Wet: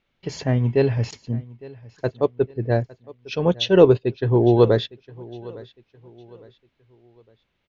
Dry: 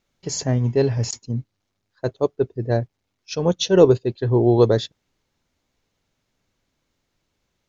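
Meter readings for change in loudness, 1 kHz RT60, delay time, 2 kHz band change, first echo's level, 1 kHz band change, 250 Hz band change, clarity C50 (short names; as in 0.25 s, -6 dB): 0.0 dB, none, 0.858 s, +3.0 dB, -21.0 dB, +0.5 dB, 0.0 dB, none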